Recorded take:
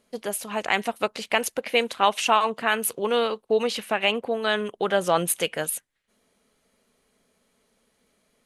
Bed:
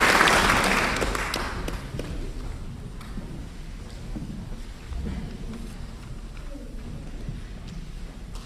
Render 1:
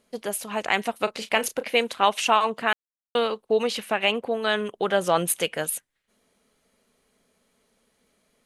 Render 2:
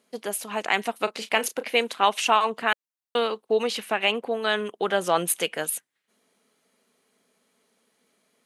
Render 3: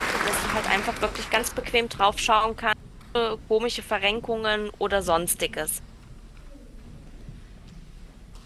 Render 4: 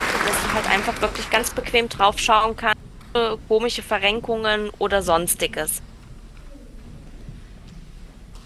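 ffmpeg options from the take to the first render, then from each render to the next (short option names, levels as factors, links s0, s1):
-filter_complex "[0:a]asettb=1/sr,asplit=3[s0][s1][s2];[s0]atrim=end=1.044[s3];[s1]atrim=start=1.04:end=1.64,asetpts=PTS-STARTPTS,afade=t=in:d=0.004:c=qsin,afade=t=out:st=0.596:d=0.004:c=qsin,asplit=2[s4][s5];[s5]adelay=32,volume=0.251[s6];[s4][s6]amix=inputs=2:normalize=0,atrim=end_sample=26460[s7];[s2]atrim=start=1.636[s8];[s3][s7]acrossfade=d=0.004:c1=hsin:c2=qsin[s9];[s9][s8]acrossfade=d=0.004:c1=qsin:c2=hsin,asplit=3[s10][s11][s12];[s10]atrim=end=2.73,asetpts=PTS-STARTPTS,afade=t=out:st=2.726:d=0.004:c=hsin[s13];[s11]atrim=start=2.73:end=3.15,asetpts=PTS-STARTPTS,volume=0[s14];[s12]atrim=start=3.15,asetpts=PTS-STARTPTS,afade=t=in:d=0.004:c=hsin[s15];[s13][s14][s15]concat=n=3:v=0:a=1"
-af "highpass=200,equalizer=f=560:t=o:w=0.28:g=-3.5"
-filter_complex "[1:a]volume=0.398[s0];[0:a][s0]amix=inputs=2:normalize=0"
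-af "volume=1.58"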